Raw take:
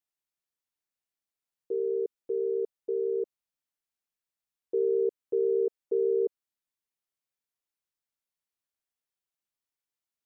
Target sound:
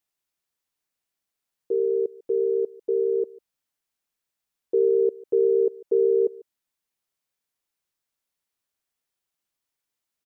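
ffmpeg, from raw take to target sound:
-af "aecho=1:1:147:0.075,volume=2.11"

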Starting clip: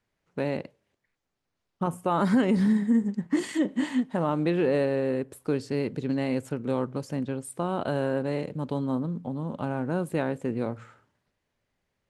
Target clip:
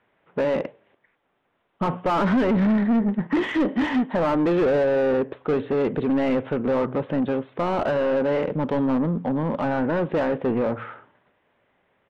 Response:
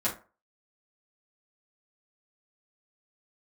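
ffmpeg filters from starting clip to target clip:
-filter_complex "[0:a]aresample=8000,aresample=44100,asplit=2[s0][s1];[s1]highpass=f=720:p=1,volume=22.4,asoftclip=type=tanh:threshold=0.237[s2];[s0][s2]amix=inputs=2:normalize=0,lowpass=f=1000:p=1,volume=0.501"

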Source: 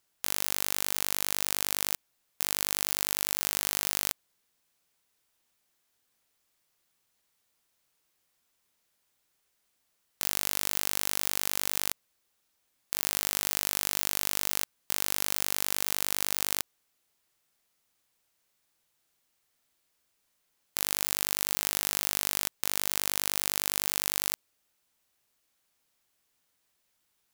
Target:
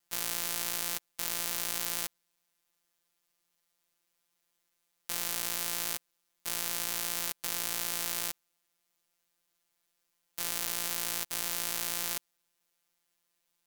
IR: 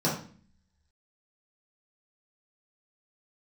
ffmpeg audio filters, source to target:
-af "afftfilt=real='hypot(re,im)*cos(PI*b)':imag='0':win_size=1024:overlap=0.75,atempo=2"

